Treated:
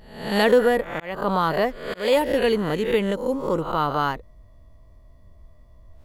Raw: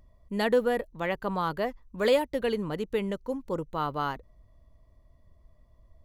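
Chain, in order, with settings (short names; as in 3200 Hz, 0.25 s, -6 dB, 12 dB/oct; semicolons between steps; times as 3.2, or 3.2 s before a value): spectral swells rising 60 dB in 0.61 s; 0.9–2.17 auto swell 0.289 s; gain +6.5 dB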